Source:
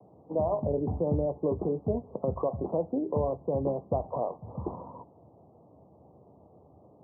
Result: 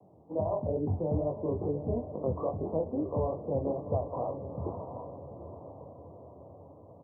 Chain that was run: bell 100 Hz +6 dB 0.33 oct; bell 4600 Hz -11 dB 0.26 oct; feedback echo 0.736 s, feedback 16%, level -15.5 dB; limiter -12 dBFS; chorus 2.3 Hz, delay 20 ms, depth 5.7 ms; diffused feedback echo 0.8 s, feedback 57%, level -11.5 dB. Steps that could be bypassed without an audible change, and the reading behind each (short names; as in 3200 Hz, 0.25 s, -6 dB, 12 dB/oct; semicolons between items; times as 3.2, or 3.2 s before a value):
bell 4600 Hz: input band ends at 1200 Hz; limiter -12 dBFS: input peak -15.0 dBFS